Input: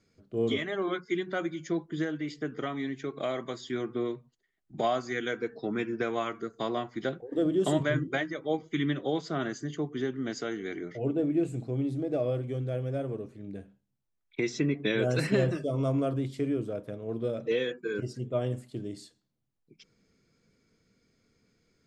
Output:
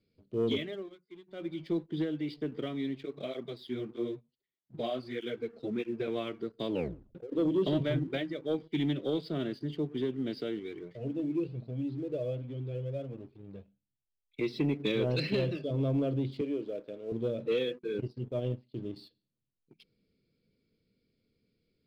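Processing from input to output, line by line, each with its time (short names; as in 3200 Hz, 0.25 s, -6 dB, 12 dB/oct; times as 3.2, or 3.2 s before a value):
0.58–1.6 dip -19 dB, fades 0.32 s
3.03–6.08 tape flanging out of phase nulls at 1.6 Hz, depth 7.9 ms
6.67 tape stop 0.48 s
10.59–14.41 cascading flanger rising 1.5 Hz
15.16–15.71 tilt shelf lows -4 dB, about 1100 Hz
16.41–17.12 HPF 330 Hz
17.75–18.96 transient shaper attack -3 dB, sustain -9 dB
whole clip: elliptic low-pass 4600 Hz; band shelf 1200 Hz -12 dB; sample leveller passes 1; gain -3 dB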